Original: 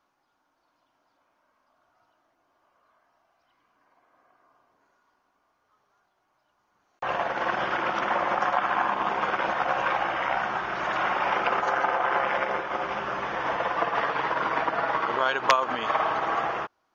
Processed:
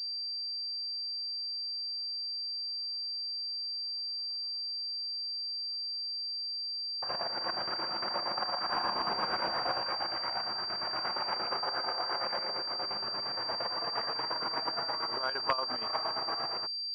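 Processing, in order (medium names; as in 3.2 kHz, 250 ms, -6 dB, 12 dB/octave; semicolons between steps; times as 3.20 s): square tremolo 8.6 Hz, depth 60%, duty 55%; 8.69–9.78 s: power-law waveshaper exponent 0.7; class-D stage that switches slowly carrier 4.7 kHz; trim -8.5 dB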